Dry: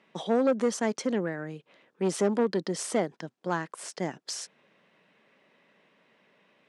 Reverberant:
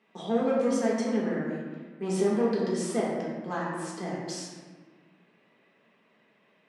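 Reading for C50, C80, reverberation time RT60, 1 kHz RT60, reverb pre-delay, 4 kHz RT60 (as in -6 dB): -0.5 dB, 2.0 dB, 1.5 s, 1.4 s, 4 ms, 0.90 s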